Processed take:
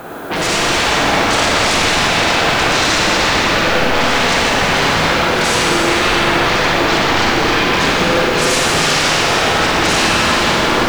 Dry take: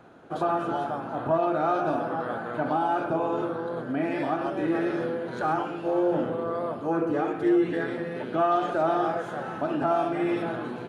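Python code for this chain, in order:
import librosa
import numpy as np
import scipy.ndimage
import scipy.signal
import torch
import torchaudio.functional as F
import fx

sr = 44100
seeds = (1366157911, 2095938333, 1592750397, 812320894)

p1 = fx.peak_eq(x, sr, hz=140.0, db=-7.5, octaves=2.0)
p2 = fx.rider(p1, sr, range_db=3, speed_s=0.5)
p3 = p1 + (p2 * 10.0 ** (3.0 / 20.0))
p4 = fx.dmg_noise_colour(p3, sr, seeds[0], colour='violet', level_db=-59.0)
p5 = fx.fold_sine(p4, sr, drive_db=19, ceiling_db=-7.5)
p6 = fx.rev_schroeder(p5, sr, rt60_s=3.8, comb_ms=38, drr_db=-4.5)
y = p6 * 10.0 ** (-9.0 / 20.0)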